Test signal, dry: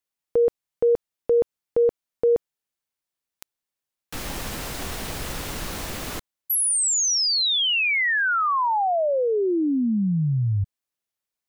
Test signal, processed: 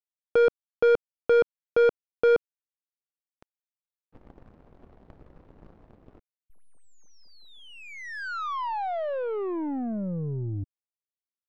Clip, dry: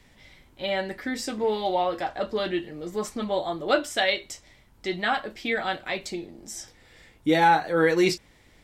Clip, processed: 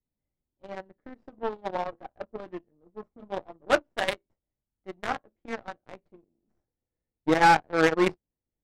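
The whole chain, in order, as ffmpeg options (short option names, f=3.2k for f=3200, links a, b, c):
-af "aeval=exprs='0.447*(cos(1*acos(clip(val(0)/0.447,-1,1)))-cos(1*PI/2))+0.0251*(cos(5*acos(clip(val(0)/0.447,-1,1)))-cos(5*PI/2))+0.00282*(cos(6*acos(clip(val(0)/0.447,-1,1)))-cos(6*PI/2))+0.0794*(cos(7*acos(clip(val(0)/0.447,-1,1)))-cos(7*PI/2))+0.00794*(cos(8*acos(clip(val(0)/0.447,-1,1)))-cos(8*PI/2))':c=same,lowshelf=f=250:g=-3.5,adynamicsmooth=sensitivity=1:basefreq=610,volume=1dB"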